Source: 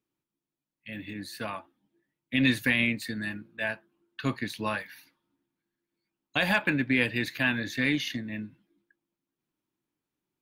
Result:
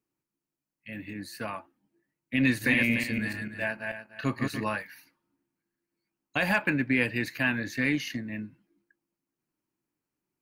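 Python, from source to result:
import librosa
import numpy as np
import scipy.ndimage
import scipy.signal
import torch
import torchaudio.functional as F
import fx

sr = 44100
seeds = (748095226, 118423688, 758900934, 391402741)

y = fx.reverse_delay_fb(x, sr, ms=147, feedback_pct=42, wet_db=-3.5, at=(2.45, 4.65))
y = fx.peak_eq(y, sr, hz=3500.0, db=-13.5, octaves=0.24)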